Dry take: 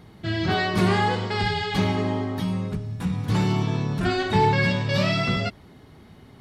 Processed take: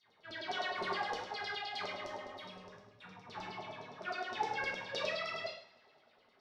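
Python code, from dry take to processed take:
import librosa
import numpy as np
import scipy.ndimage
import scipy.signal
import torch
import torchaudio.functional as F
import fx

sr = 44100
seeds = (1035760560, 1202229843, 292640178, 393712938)

y = fx.high_shelf(x, sr, hz=5100.0, db=-10.0, at=(2.6, 4.78))
y = fx.filter_lfo_bandpass(y, sr, shape='saw_down', hz=9.7, low_hz=500.0, high_hz=5600.0, q=7.2)
y = fx.rev_double_slope(y, sr, seeds[0], early_s=0.55, late_s=2.5, knee_db=-26, drr_db=-1.0)
y = F.gain(torch.from_numpy(y), -4.5).numpy()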